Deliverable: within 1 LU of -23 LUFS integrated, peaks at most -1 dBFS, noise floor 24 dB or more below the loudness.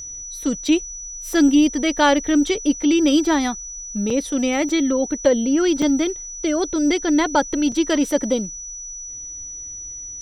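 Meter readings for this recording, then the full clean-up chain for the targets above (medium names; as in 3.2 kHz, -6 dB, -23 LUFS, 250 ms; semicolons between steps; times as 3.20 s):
dropouts 4; longest dropout 4.2 ms; steady tone 5.9 kHz; tone level -31 dBFS; loudness -19.5 LUFS; peak level -4.5 dBFS; loudness target -23.0 LUFS
-> interpolate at 4.10/4.69/5.82/7.72 s, 4.2 ms; band-stop 5.9 kHz, Q 30; trim -3.5 dB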